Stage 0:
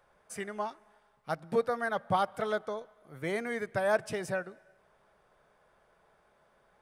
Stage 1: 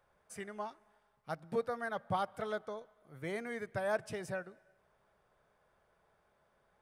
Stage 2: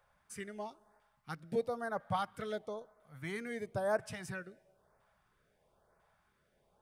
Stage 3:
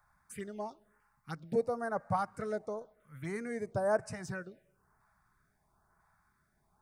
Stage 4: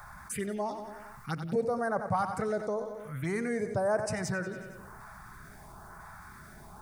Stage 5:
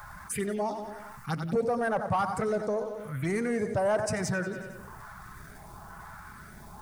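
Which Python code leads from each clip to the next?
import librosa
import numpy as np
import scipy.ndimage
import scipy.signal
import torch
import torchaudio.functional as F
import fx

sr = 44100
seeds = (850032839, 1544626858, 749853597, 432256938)

y1 = fx.peak_eq(x, sr, hz=84.0, db=5.5, octaves=1.4)
y1 = y1 * 10.0 ** (-6.5 / 20.0)
y2 = fx.filter_lfo_notch(y1, sr, shape='saw_up', hz=1.0, low_hz=260.0, high_hz=3600.0, q=0.77)
y2 = y2 * 10.0 ** (2.0 / 20.0)
y3 = fx.env_phaser(y2, sr, low_hz=490.0, high_hz=3300.0, full_db=-38.5)
y3 = y3 * 10.0 ** (3.5 / 20.0)
y4 = fx.echo_feedback(y3, sr, ms=92, feedback_pct=49, wet_db=-14.0)
y4 = fx.env_flatten(y4, sr, amount_pct=50)
y5 = fx.spec_quant(y4, sr, step_db=15)
y5 = fx.leveller(y5, sr, passes=1)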